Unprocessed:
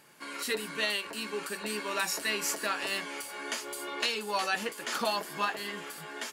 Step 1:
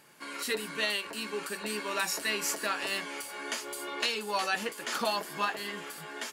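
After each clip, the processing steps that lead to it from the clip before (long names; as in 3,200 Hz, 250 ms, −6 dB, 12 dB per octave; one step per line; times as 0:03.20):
no processing that can be heard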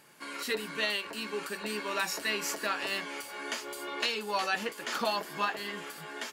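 dynamic equaliser 9,700 Hz, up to −6 dB, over −51 dBFS, Q 1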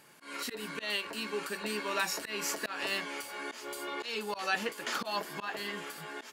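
volume swells 144 ms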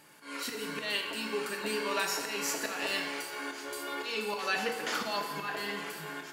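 feedback delay network reverb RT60 1.7 s, low-frequency decay 0.8×, high-frequency decay 0.75×, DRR 2.5 dB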